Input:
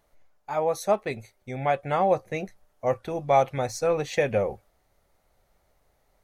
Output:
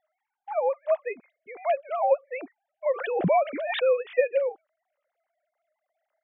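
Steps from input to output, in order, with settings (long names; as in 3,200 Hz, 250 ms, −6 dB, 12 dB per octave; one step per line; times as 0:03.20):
three sine waves on the formant tracks
0:02.86–0:04.17: background raised ahead of every attack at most 41 dB per second
level −1 dB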